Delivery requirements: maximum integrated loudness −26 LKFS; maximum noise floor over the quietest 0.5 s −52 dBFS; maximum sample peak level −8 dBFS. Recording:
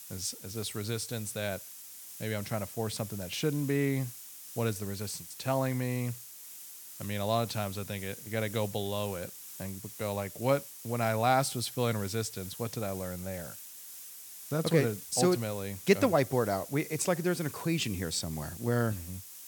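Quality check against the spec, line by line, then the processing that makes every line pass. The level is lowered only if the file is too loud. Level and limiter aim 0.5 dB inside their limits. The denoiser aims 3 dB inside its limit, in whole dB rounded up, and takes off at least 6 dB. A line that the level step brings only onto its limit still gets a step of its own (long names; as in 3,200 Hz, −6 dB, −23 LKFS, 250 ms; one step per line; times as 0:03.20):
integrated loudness −32.5 LKFS: in spec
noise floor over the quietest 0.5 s −47 dBFS: out of spec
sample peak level −9.5 dBFS: in spec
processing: broadband denoise 8 dB, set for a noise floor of −47 dBFS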